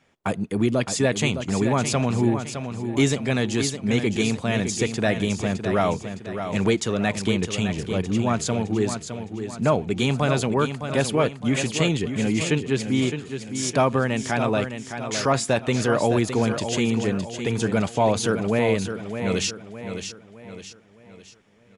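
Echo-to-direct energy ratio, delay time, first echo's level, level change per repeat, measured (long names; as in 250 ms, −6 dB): −7.5 dB, 612 ms, −8.5 dB, −7.5 dB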